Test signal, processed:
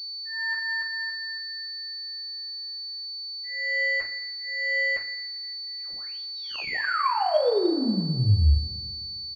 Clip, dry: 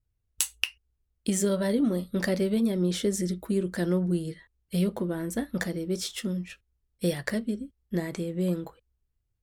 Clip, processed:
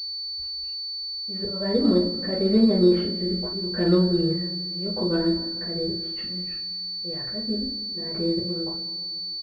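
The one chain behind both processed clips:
volume swells 393 ms
high-frequency loss of the air 360 metres
double-tracking delay 39 ms −8.5 dB
coupled-rooms reverb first 0.27 s, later 2.1 s, from −18 dB, DRR −8 dB
switching amplifier with a slow clock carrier 4,500 Hz

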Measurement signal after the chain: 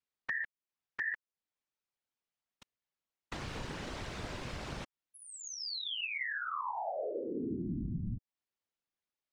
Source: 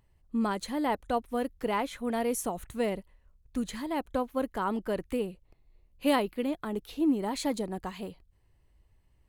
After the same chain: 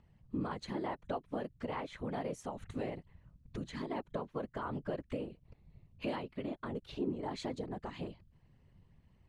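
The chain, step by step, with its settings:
downward compressor 3 to 1, threshold −41 dBFS
random phases in short frames
high-frequency loss of the air 110 metres
level +2 dB

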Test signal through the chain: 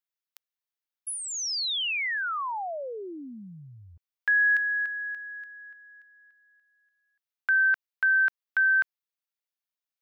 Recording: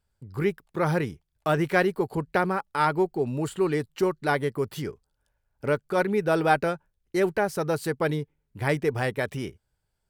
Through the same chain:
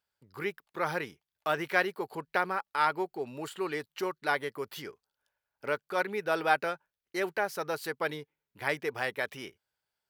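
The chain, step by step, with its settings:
high-pass filter 1,100 Hz 6 dB per octave
parametric band 8,400 Hz −8 dB 0.78 octaves

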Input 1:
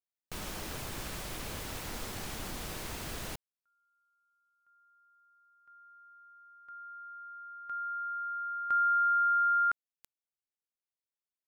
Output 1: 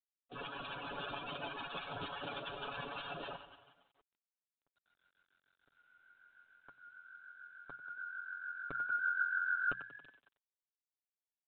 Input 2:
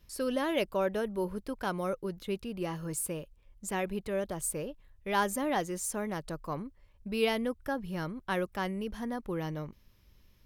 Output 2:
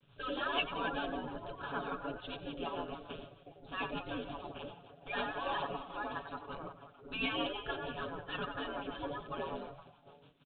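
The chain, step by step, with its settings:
spectral magnitudes quantised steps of 30 dB
echo with shifted repeats 92 ms, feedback 64%, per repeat +45 Hz, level −13 dB
rotating-speaker cabinet horn 6.7 Hz
Butterworth band-reject 2,000 Hz, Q 2.4
mains-hum notches 60/120/180 Hz
gate on every frequency bin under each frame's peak −10 dB weak
comb filter 7.1 ms, depth 77%
level +7.5 dB
G.726 32 kbit/s 8,000 Hz

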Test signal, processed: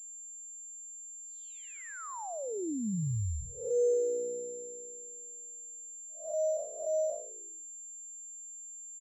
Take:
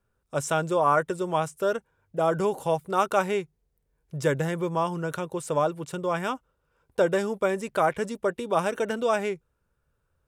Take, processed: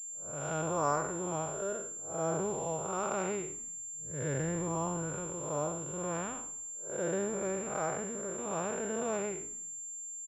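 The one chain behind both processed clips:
spectrum smeared in time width 211 ms
low-pass that shuts in the quiet parts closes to 1,000 Hz, open at −28.5 dBFS
high-pass filter 55 Hz
on a send: echo with shifted repeats 97 ms, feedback 57%, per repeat −61 Hz, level −20 dB
on the sum: switching amplifier with a slow clock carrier 7,300 Hz
level −4.5 dB

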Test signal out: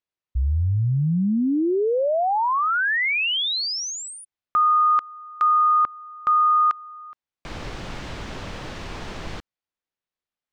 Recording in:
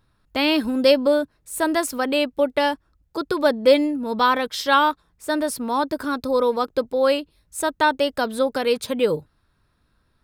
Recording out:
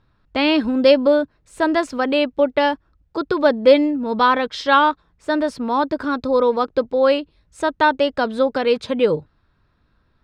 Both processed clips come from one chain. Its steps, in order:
high-frequency loss of the air 140 metres
level +3.5 dB

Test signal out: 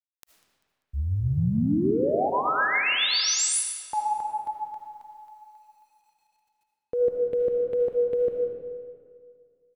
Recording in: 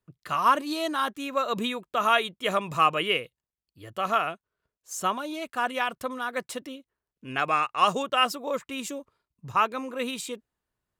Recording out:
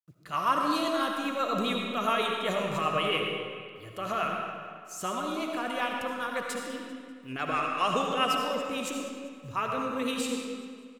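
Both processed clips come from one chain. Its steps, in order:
transient designer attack −5 dB, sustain 0 dB
in parallel at +1.5 dB: brickwall limiter −20 dBFS
on the sum: rotating-speaker cabinet horn 7.5 Hz
bit reduction 11 bits
on a send: repeating echo 196 ms, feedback 43%, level −17 dB
on the sum: comb and all-pass reverb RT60 2 s, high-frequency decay 0.7×, pre-delay 35 ms, DRR 0.5 dB
level −6 dB

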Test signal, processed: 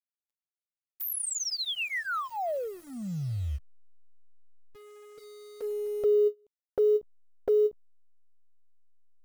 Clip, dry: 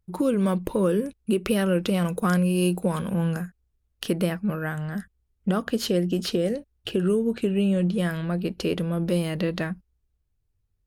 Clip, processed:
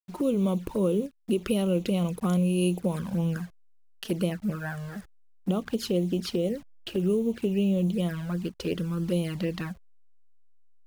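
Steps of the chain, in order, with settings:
hold until the input has moved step −42 dBFS
flanger swept by the level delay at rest 8.4 ms, full sweep at −20 dBFS
every ending faded ahead of time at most 480 dB per second
level −2 dB

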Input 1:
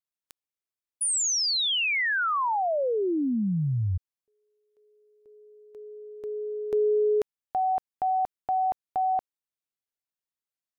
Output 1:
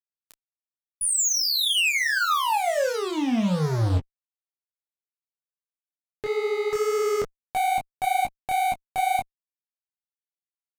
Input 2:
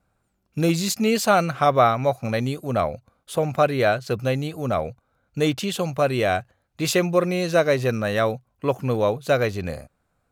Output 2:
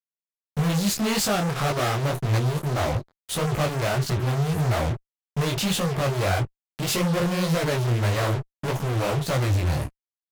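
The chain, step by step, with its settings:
low shelf with overshoot 180 Hz +8.5 dB, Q 1.5
fuzz pedal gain 40 dB, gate −38 dBFS
micro pitch shift up and down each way 59 cents
level −5.5 dB

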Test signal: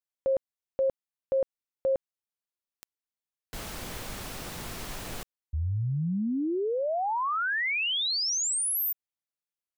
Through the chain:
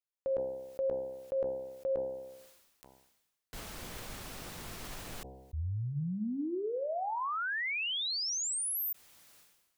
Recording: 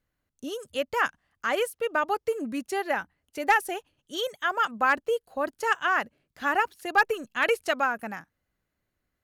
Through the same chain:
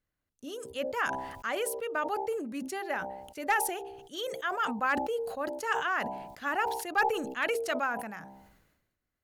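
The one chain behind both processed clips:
hum removal 65.82 Hz, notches 15
level that may fall only so fast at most 53 dB per second
level −6 dB

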